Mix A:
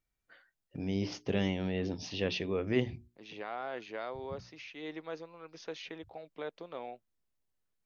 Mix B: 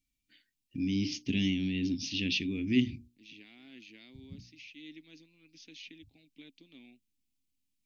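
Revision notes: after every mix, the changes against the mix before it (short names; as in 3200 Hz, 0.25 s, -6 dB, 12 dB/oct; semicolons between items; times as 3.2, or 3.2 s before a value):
second voice -7.5 dB; master: add EQ curve 180 Hz 0 dB, 270 Hz +10 dB, 500 Hz -22 dB, 1300 Hz -24 dB, 2400 Hz +6 dB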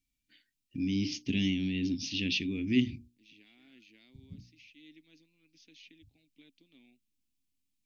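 second voice -7.0 dB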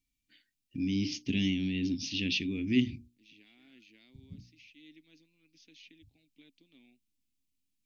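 none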